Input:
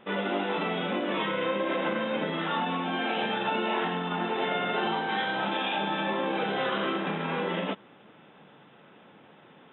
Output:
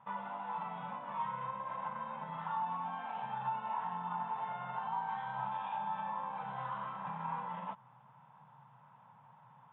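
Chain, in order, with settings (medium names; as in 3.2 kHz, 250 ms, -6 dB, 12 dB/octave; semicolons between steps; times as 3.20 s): compression, threshold -30 dBFS, peak gain reduction 6.5 dB; two resonant band-passes 350 Hz, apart 2.9 oct; trim +5.5 dB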